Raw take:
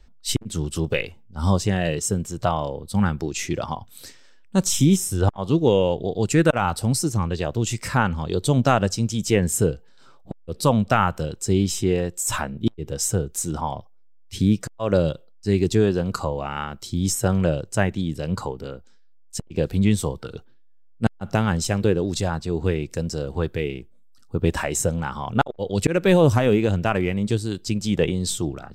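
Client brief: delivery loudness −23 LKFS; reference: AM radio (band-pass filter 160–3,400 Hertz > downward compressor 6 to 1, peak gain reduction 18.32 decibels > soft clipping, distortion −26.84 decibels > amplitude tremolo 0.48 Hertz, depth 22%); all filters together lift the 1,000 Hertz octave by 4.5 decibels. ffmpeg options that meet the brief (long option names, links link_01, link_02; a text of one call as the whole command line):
ffmpeg -i in.wav -af "highpass=160,lowpass=3400,equalizer=frequency=1000:width_type=o:gain=6,acompressor=threshold=-29dB:ratio=6,asoftclip=threshold=-15.5dB,tremolo=f=0.48:d=0.22,volume=13dB" out.wav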